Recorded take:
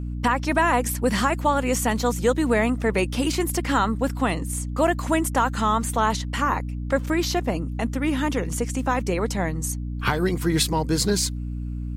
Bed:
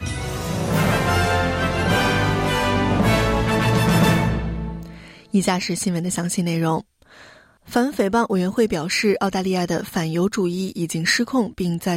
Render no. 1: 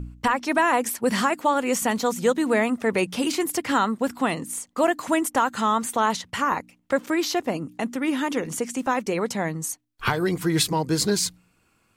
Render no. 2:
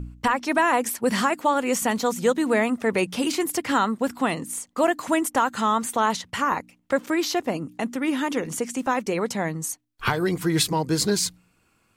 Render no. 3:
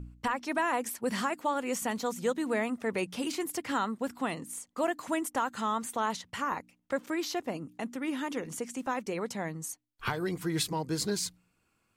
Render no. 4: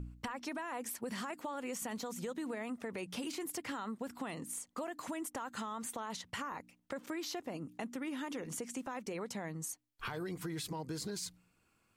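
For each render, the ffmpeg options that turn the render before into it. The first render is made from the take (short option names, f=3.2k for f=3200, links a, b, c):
-af "bandreject=f=60:t=h:w=4,bandreject=f=120:t=h:w=4,bandreject=f=180:t=h:w=4,bandreject=f=240:t=h:w=4,bandreject=f=300:t=h:w=4"
-af anull
-af "volume=-9dB"
-af "alimiter=level_in=2.5dB:limit=-24dB:level=0:latency=1:release=35,volume=-2.5dB,acompressor=threshold=-38dB:ratio=4"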